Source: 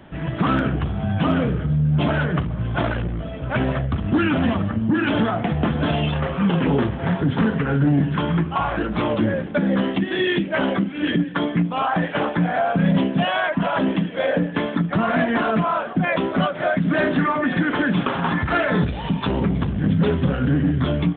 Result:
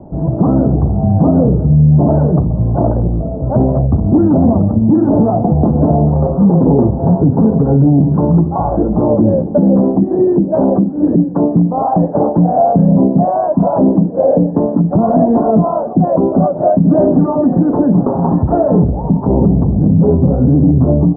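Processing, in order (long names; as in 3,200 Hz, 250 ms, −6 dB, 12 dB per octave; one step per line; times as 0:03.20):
Butterworth low-pass 830 Hz 36 dB per octave
boost into a limiter +12 dB
level −1 dB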